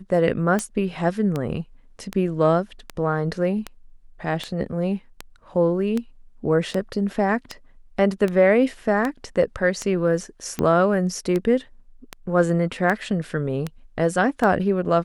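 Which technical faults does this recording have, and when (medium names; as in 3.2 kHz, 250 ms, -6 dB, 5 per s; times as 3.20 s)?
tick 78 rpm -12 dBFS
6.71 s: dropout 2.6 ms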